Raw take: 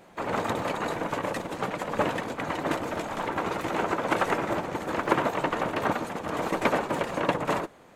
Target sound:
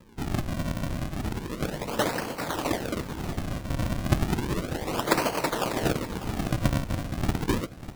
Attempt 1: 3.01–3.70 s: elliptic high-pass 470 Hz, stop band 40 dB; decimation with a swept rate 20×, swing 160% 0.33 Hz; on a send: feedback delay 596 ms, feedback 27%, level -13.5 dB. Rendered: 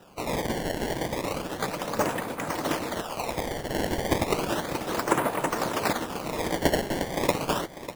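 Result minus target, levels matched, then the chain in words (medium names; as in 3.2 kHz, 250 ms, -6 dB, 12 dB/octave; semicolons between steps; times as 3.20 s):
decimation with a swept rate: distortion -9 dB
3.01–3.70 s: elliptic high-pass 470 Hz, stop band 40 dB; decimation with a swept rate 59×, swing 160% 0.33 Hz; on a send: feedback delay 596 ms, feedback 27%, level -13.5 dB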